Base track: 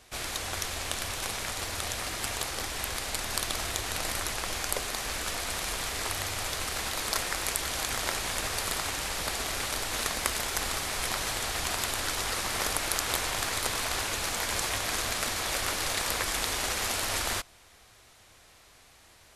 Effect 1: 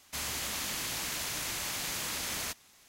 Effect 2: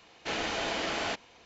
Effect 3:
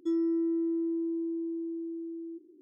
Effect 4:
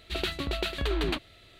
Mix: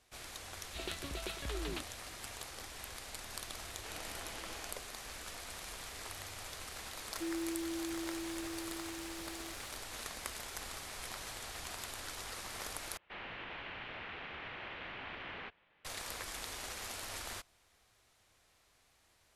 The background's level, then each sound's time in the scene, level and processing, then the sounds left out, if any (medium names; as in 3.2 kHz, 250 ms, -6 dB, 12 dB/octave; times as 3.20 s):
base track -13.5 dB
0.64 s: add 4 -11.5 dB
3.58 s: add 2 -13 dB + peak limiter -28.5 dBFS
7.15 s: add 3 -10.5 dB + zero-crossing glitches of -39 dBFS
12.97 s: replace with 1 -5 dB + mistuned SSB -230 Hz 270–3200 Hz